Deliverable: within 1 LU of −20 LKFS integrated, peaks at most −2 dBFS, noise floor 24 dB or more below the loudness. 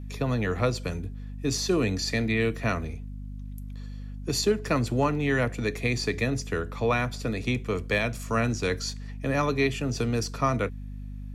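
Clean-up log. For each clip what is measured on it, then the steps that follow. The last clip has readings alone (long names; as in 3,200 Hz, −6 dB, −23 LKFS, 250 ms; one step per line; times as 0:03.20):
mains hum 50 Hz; hum harmonics up to 250 Hz; level of the hum −35 dBFS; integrated loudness −27.5 LKFS; sample peak −11.5 dBFS; target loudness −20.0 LKFS
→ hum removal 50 Hz, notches 5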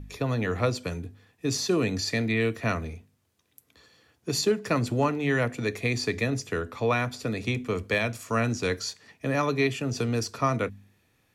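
mains hum none found; integrated loudness −27.5 LKFS; sample peak −12.0 dBFS; target loudness −20.0 LKFS
→ level +7.5 dB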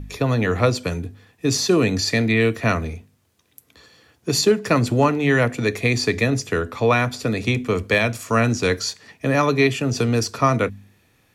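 integrated loudness −20.0 LKFS; sample peak −4.5 dBFS; background noise floor −62 dBFS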